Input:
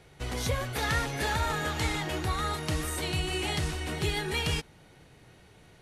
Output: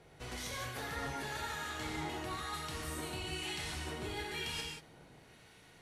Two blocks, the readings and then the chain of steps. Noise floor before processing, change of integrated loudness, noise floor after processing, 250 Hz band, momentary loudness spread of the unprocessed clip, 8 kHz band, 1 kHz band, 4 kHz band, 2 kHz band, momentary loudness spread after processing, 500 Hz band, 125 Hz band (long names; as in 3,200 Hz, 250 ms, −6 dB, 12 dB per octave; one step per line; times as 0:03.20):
−57 dBFS, −9.5 dB, −60 dBFS, −9.0 dB, 3 LU, −8.0 dB, −8.5 dB, −7.5 dB, −8.5 dB, 20 LU, −10.0 dB, −13.5 dB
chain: low-shelf EQ 160 Hz −7.5 dB
reversed playback
downward compressor, threshold −36 dBFS, peak gain reduction 10.5 dB
reversed playback
two-band tremolo in antiphase 1 Hz, depth 50%, crossover 1,300 Hz
reverb whose tail is shaped and stops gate 210 ms flat, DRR −0.5 dB
level −2 dB